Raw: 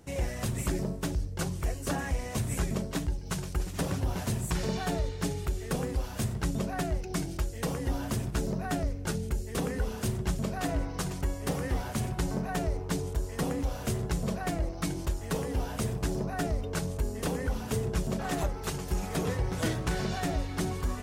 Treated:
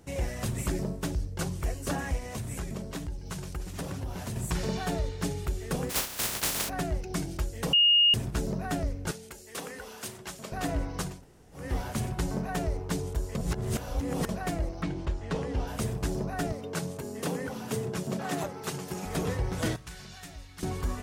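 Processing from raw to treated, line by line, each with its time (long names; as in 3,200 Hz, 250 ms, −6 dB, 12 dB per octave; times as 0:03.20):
0:02.18–0:04.36: downward compressor 2 to 1, threshold −35 dBFS
0:05.89–0:06.68: compressing power law on the bin magnitudes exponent 0.17
0:07.73–0:08.14: beep over 2,850 Hz −17.5 dBFS
0:09.11–0:10.52: high-pass filter 980 Hz 6 dB per octave
0:11.13–0:11.63: fill with room tone, crossfade 0.24 s
0:13.35–0:14.29: reverse
0:14.81–0:15.66: low-pass filter 2,900 Hz → 5,900 Hz
0:16.52–0:19.05: high-pass filter 120 Hz 24 dB per octave
0:19.76–0:20.63: guitar amp tone stack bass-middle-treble 5-5-5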